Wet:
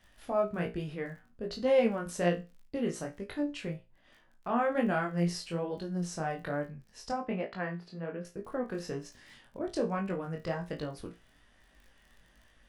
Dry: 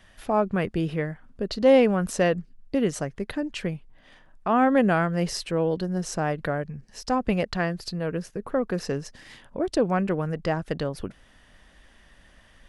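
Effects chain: crackle 16 per s -38 dBFS; chorus 1.2 Hz, delay 20 ms, depth 5.3 ms; 7.12–8.25 s: three-band isolator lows -18 dB, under 160 Hz, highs -20 dB, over 3 kHz; feedback comb 58 Hz, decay 0.26 s, harmonics all, mix 80%

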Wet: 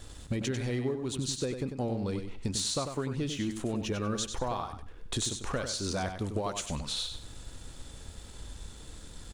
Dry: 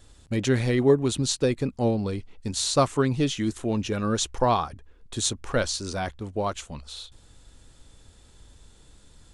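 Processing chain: 6.14–6.66 s: treble shelf 4.4 kHz +8 dB; compression 16:1, threshold -36 dBFS, peak gain reduction 23 dB; waveshaping leveller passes 1; feedback delay 96 ms, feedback 24%, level -7.5 dB; trim +3 dB

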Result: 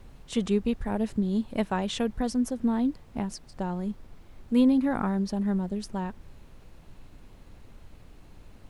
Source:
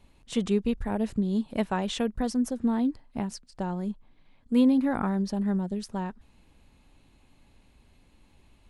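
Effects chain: added noise brown -47 dBFS

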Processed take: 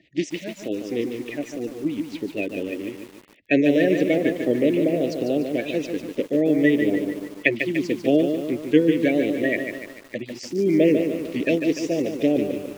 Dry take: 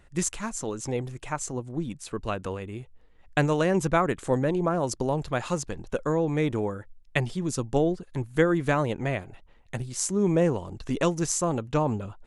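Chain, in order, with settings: coarse spectral quantiser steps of 30 dB; elliptic band-stop 650–2100 Hz, stop band 50 dB; cabinet simulation 280–4400 Hz, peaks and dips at 300 Hz +9 dB, 1.2 kHz +6 dB, 1.9 kHz +8 dB, 2.8 kHz +5 dB; speed mistake 25 fps video run at 24 fps; bit-crushed delay 147 ms, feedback 55%, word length 8-bit, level -6.5 dB; trim +5.5 dB

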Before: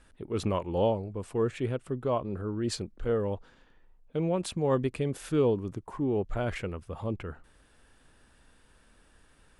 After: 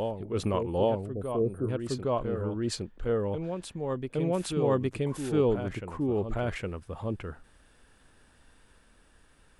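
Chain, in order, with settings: spectral selection erased 1.05–1.69 s, 750–8600 Hz; reverse echo 813 ms -6 dB

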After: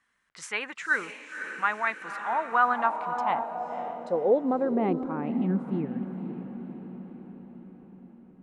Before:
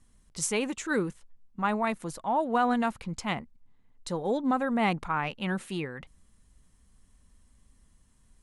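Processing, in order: echo that smears into a reverb 530 ms, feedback 59%, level -9 dB; band-pass sweep 1.7 kHz -> 240 Hz, 2.15–5.58 s; trim +9 dB

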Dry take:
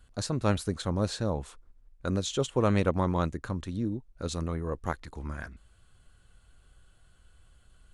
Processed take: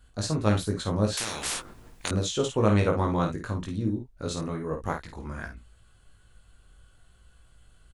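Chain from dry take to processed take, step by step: early reflections 19 ms -3 dB, 52 ms -6.5 dB, 69 ms -11.5 dB; 1.17–2.11 s: spectrum-flattening compressor 10:1

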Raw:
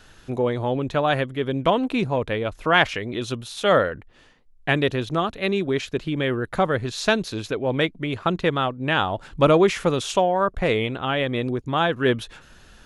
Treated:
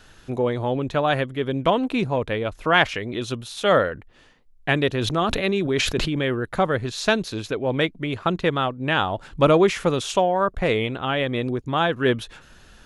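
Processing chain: 4.93–6.19 s: decay stretcher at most 27 dB/s

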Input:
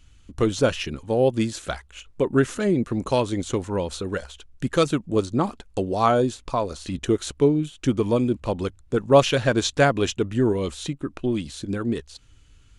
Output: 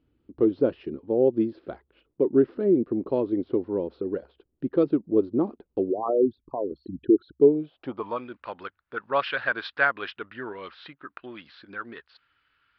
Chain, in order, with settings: 5.90–7.42 s: resonances exaggerated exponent 3; band-pass sweep 350 Hz -> 1.5 kHz, 7.38–8.27 s; resampled via 11.025 kHz; trim +3.5 dB

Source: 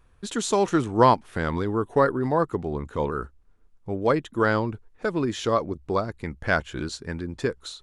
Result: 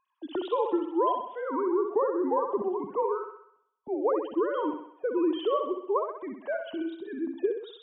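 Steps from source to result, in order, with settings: formants replaced by sine waves; compression, threshold -23 dBFS, peak gain reduction 10 dB; high-order bell 1.8 kHz -13 dB 1.1 oct; thinning echo 64 ms, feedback 56%, high-pass 260 Hz, level -5.5 dB

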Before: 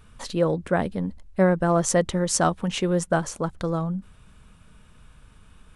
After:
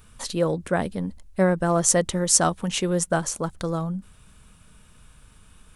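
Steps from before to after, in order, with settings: treble shelf 5.5 kHz +12 dB; trim -1 dB

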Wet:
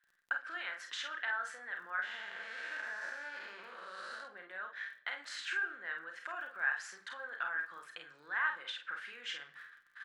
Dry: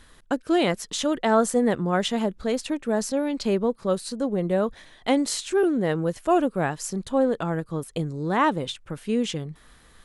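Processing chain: 2.02–4.23 s: spectral blur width 330 ms; recorder AGC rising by 5.9 dB/s; gate -44 dBFS, range -25 dB; peak limiter -19 dBFS, peak gain reduction 11.5 dB; compression 2.5:1, threshold -32 dBFS, peak gain reduction 7 dB; ladder band-pass 1.7 kHz, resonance 75%; crackle 11 per s -63 dBFS; early reflections 34 ms -8.5 dB, 49 ms -6 dB; simulated room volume 2600 m³, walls furnished, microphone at 0.87 m; trim +9 dB

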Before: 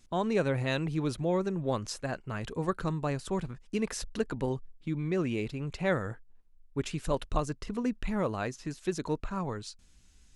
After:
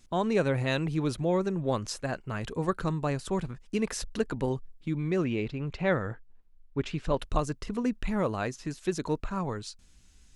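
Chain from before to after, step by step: 5.24–7.19 s: low-pass 4.2 kHz 12 dB/octave; trim +2 dB

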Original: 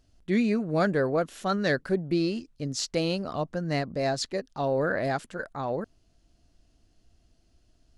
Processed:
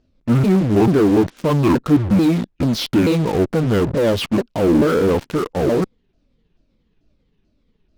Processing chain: sawtooth pitch modulation -10.5 st, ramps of 438 ms; distance through air 110 m; in parallel at -11 dB: fuzz box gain 51 dB, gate -45 dBFS; on the sum: peaking EQ 290 Hz +8.5 dB 2.1 oct

